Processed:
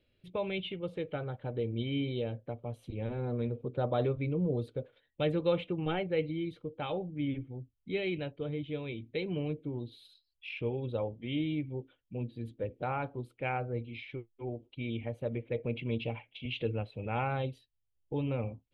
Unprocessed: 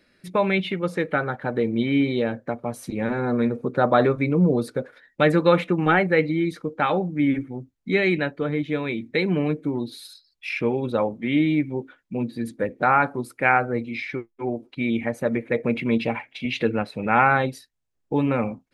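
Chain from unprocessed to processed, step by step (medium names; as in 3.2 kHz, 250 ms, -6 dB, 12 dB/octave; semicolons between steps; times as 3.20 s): FFT filter 110 Hz 0 dB, 200 Hz -15 dB, 490 Hz -9 dB, 1.8 kHz -23 dB, 3.1 kHz -3 dB, 5.2 kHz -25 dB; trim -1 dB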